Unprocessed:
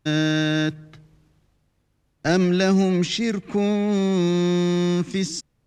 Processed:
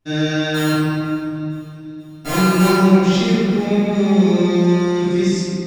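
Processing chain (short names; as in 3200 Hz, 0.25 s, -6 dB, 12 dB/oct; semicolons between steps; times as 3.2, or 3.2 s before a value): 0.54–2.68 sample sorter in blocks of 32 samples; on a send: thin delay 0.48 s, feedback 64%, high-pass 2200 Hz, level -22 dB; on the sum: shoebox room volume 120 m³, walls hard, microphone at 1.8 m; gain -8.5 dB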